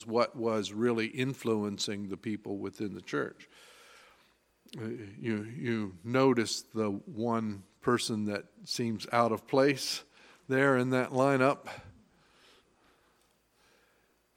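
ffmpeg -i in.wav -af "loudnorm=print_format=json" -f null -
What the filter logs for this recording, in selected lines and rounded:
"input_i" : "-31.6",
"input_tp" : "-10.7",
"input_lra" : "11.3",
"input_thresh" : "-43.6",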